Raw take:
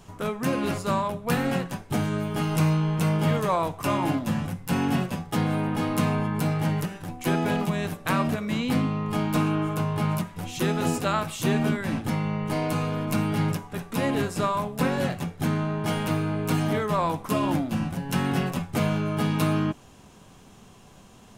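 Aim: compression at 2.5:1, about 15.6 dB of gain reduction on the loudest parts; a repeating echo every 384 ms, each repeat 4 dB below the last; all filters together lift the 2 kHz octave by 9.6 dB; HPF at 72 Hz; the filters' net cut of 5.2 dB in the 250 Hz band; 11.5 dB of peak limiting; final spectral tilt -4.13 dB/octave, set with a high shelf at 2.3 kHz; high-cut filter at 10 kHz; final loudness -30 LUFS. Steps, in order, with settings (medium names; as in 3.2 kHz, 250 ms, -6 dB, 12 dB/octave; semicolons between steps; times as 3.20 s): high-pass 72 Hz; low-pass 10 kHz; peaking EQ 250 Hz -8 dB; peaking EQ 2 kHz +8.5 dB; treble shelf 2.3 kHz +7.5 dB; compression 2.5:1, threshold -43 dBFS; peak limiter -31 dBFS; feedback delay 384 ms, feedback 63%, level -4 dB; trim +8.5 dB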